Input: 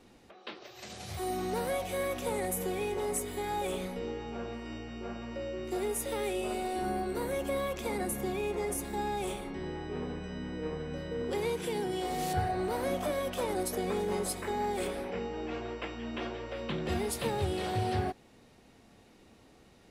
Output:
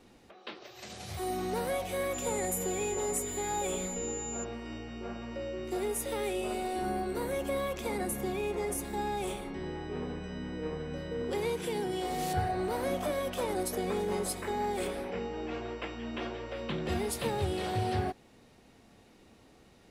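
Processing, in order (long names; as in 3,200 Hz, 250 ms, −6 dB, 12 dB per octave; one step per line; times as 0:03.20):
0:02.13–0:04.43: steady tone 7,100 Hz −38 dBFS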